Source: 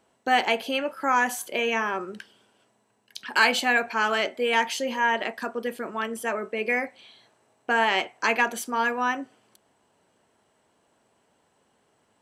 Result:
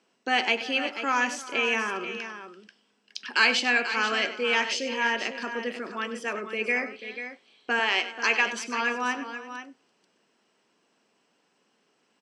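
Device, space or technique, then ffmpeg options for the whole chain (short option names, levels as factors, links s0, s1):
television speaker: -filter_complex "[0:a]asettb=1/sr,asplit=3[s0][s1][s2];[s0]atrim=end=7.794[s3];[s1]atrim=start=7.79:end=8.46,asetpts=PTS-STARTPTS,afade=t=in:d=0.004:c=qsin,afade=t=out:st=0.666:d=0.004:c=qsin,bass=f=250:g=-13,treble=f=4000:g=1[s4];[s2]atrim=start=8.456[s5];[s3][s4]acrossfade=d=0.004:c1=hsin:c2=qsin[s6];[s6][s5]acrossfade=d=0.004:c1=qsin:c2=hsin,highpass=f=170:w=0.5412,highpass=f=170:w=1.3066,equalizer=f=620:t=q:w=4:g=-6,equalizer=f=870:t=q:w=4:g=-5,equalizer=f=2600:t=q:w=4:g=6,equalizer=f=5200:t=q:w=4:g=9,lowpass=f=7400:w=0.5412,lowpass=f=7400:w=1.3066,aecho=1:1:97|338|487:0.211|0.126|0.299,volume=0.794"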